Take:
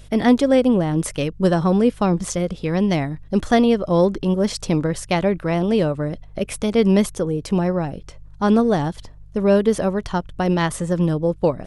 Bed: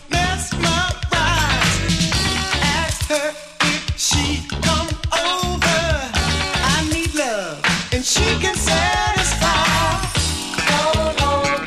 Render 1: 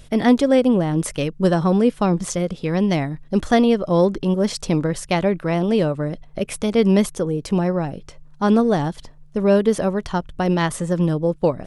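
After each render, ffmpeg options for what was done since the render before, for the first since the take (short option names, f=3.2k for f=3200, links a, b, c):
-af "bandreject=f=50:t=h:w=4,bandreject=f=100:t=h:w=4"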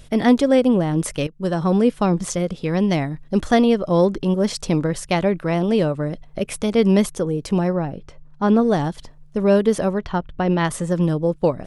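-filter_complex "[0:a]asettb=1/sr,asplit=3[a][b][c];[a]atrim=end=7.734[d];[b]atrim=start=7.73:end=8.62,asetpts=PTS-STARTPTS,afade=t=in:d=0.004:c=qsin,afade=t=out:st=0.886:d=0.004:c=qsin,lowpass=f=2.4k:p=1[e];[c]atrim=start=8.616[f];[d][e]acrossfade=d=0.004:c1=hsin:c2=qsin[g];[g][f]acrossfade=d=0.004:c1=qsin:c2=hsin,asettb=1/sr,asplit=3[h][i][j];[h]atrim=end=9.984[k];[i]atrim=start=9.98:end=10.65,asetpts=PTS-STARTPTS,afade=t=in:d=0.004:c=qsin,afade=t=out:st=0.666:d=0.004:c=qsin,lowpass=3.4k[l];[j]atrim=start=10.646[m];[k][l]acrossfade=d=0.004:c1=hsin:c2=qsin[n];[n][m]acrossfade=d=0.004:c1=qsin:c2=hsin,asplit=2[o][p];[o]atrim=end=1.27,asetpts=PTS-STARTPTS,afade=t=out:st=1.266:d=0.004:c=hsin:silence=0.177828[q];[p]atrim=start=1.27,asetpts=PTS-STARTPTS,afade=t=in:d=0.48:silence=0.177828[r];[q][r]concat=n=2:v=0:a=1"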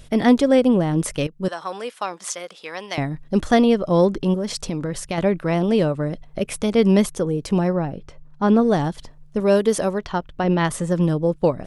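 -filter_complex "[0:a]asettb=1/sr,asplit=3[a][b][c];[a]atrim=end=1.484[d];[b]atrim=start=1.48:end=2.98,asetpts=PTS-STARTPTS,afade=t=in:d=0.004:c=qsin,afade=t=out:st=1.496:d=0.004:c=qsin,highpass=870[e];[c]atrim=start=2.976[f];[d][e]acrossfade=d=0.004:c1=hsin:c2=qsin[g];[g][f]acrossfade=d=0.004:c1=qsin:c2=hsin,asettb=1/sr,asplit=3[h][i][j];[h]atrim=end=4.354[k];[i]atrim=start=4.35:end=5.18,asetpts=PTS-STARTPTS,afade=t=in:d=0.004:c=qsin,afade=t=out:st=0.826:d=0.004:c=qsin,acompressor=threshold=-21dB:ratio=5:attack=3.2:release=140:knee=1:detection=peak[l];[j]atrim=start=5.176[m];[k][l]acrossfade=d=0.004:c1=hsin:c2=qsin[n];[n][m]acrossfade=d=0.004:c1=qsin:c2=hsin,asettb=1/sr,asplit=3[o][p][q];[o]atrim=end=9.404[r];[p]atrim=start=9.4:end=10.44,asetpts=PTS-STARTPTS,afade=t=in:d=0.004:c=qsin,afade=t=out:st=1.036:d=0.004:c=qsin,bass=f=250:g=-5,treble=f=4k:g=6[s];[q]atrim=start=10.436[t];[r][s]acrossfade=d=0.004:c1=hsin:c2=qsin[u];[u][t]acrossfade=d=0.004:c1=qsin:c2=hsin"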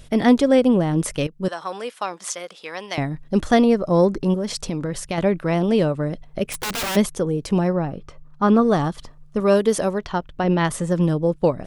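-filter_complex "[0:a]asettb=1/sr,asplit=3[a][b][c];[a]atrim=end=3.644[d];[b]atrim=start=3.64:end=4.3,asetpts=PTS-STARTPTS,afade=t=in:d=0.004:c=qsin,afade=t=out:st=0.656:d=0.004:c=qsin,equalizer=f=3.2k:t=o:w=0.29:g=-13[e];[c]atrim=start=4.296[f];[d][e]acrossfade=d=0.004:c1=hsin:c2=qsin[g];[g][f]acrossfade=d=0.004:c1=qsin:c2=hsin,asplit=3[h][i][j];[h]afade=t=out:st=6.44:d=0.02[k];[i]aeval=exprs='(mod(10.6*val(0)+1,2)-1)/10.6':c=same,afade=t=in:st=6.44:d=0.02,afade=t=out:st=6.95:d=0.02[l];[j]afade=t=in:st=6.95:d=0.02[m];[k][l][m]amix=inputs=3:normalize=0,asettb=1/sr,asplit=3[n][o][p];[n]atrim=end=7.864[q];[o]atrim=start=7.86:end=9.54,asetpts=PTS-STARTPTS,afade=t=in:d=0.004:c=qsin,afade=t=out:st=1.676:d=0.004:c=qsin,equalizer=f=1.2k:w=6.6:g=9.5[r];[p]atrim=start=9.536[s];[q][r]acrossfade=d=0.004:c1=hsin:c2=qsin[t];[t][s]acrossfade=d=0.004:c1=qsin:c2=hsin"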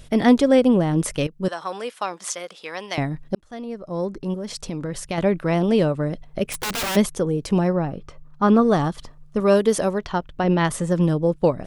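-filter_complex "[0:a]asplit=2[a][b];[a]atrim=end=3.35,asetpts=PTS-STARTPTS,afade=t=out:st=3.346:d=0.004:c=hsin[c];[b]atrim=start=3.35,asetpts=PTS-STARTPTS,afade=t=in:d=2.02[d];[c][d]concat=n=2:v=0:a=1"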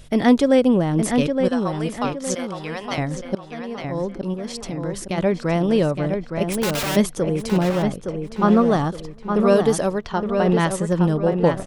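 -filter_complex "[0:a]asplit=2[a][b];[b]adelay=865,lowpass=f=3.3k:p=1,volume=-5.5dB,asplit=2[c][d];[d]adelay=865,lowpass=f=3.3k:p=1,volume=0.39,asplit=2[e][f];[f]adelay=865,lowpass=f=3.3k:p=1,volume=0.39,asplit=2[g][h];[h]adelay=865,lowpass=f=3.3k:p=1,volume=0.39,asplit=2[i][j];[j]adelay=865,lowpass=f=3.3k:p=1,volume=0.39[k];[a][c][e][g][i][k]amix=inputs=6:normalize=0"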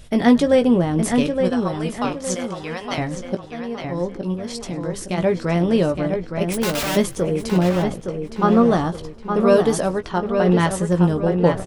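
-filter_complex "[0:a]asplit=2[a][b];[b]adelay=17,volume=-8dB[c];[a][c]amix=inputs=2:normalize=0,asplit=5[d][e][f][g][h];[e]adelay=102,afreqshift=-83,volume=-23dB[i];[f]adelay=204,afreqshift=-166,volume=-27.6dB[j];[g]adelay=306,afreqshift=-249,volume=-32.2dB[k];[h]adelay=408,afreqshift=-332,volume=-36.7dB[l];[d][i][j][k][l]amix=inputs=5:normalize=0"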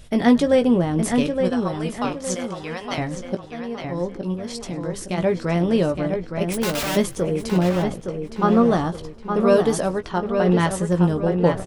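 -af "volume=-1.5dB"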